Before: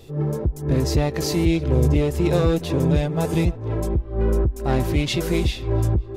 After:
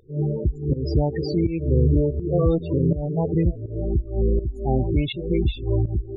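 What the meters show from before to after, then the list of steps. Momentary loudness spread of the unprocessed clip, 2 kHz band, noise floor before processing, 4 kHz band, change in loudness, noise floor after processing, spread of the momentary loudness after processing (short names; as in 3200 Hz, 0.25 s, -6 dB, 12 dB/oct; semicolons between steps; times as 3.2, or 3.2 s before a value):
5 LU, under -10 dB, -35 dBFS, n/a, -1.5 dB, -37 dBFS, 5 LU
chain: loudest bins only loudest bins 16; pump 82 bpm, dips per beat 1, -16 dB, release 0.257 s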